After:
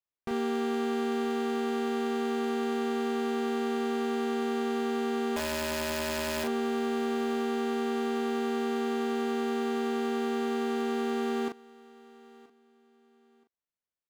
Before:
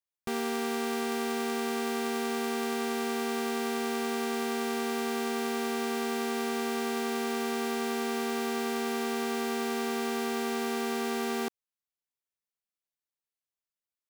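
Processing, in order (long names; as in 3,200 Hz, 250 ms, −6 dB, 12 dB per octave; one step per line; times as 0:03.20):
low-pass filter 2,000 Hz 6 dB per octave
0:05.36–0:06.44: wrap-around overflow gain 27.5 dB
double-tracking delay 38 ms −5 dB
repeating echo 976 ms, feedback 26%, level −22 dB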